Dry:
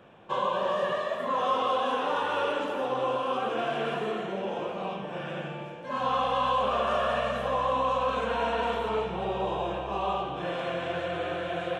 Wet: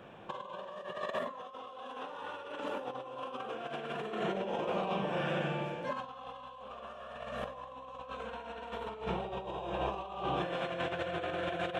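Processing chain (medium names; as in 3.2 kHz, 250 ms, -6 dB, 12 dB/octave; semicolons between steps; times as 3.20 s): compressor with a negative ratio -34 dBFS, ratio -0.5; trim -3.5 dB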